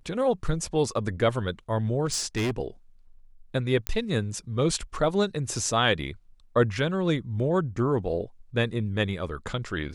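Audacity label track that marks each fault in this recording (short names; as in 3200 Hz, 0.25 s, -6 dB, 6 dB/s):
2.050000	2.510000	clipped -23 dBFS
3.870000	3.870000	pop -10 dBFS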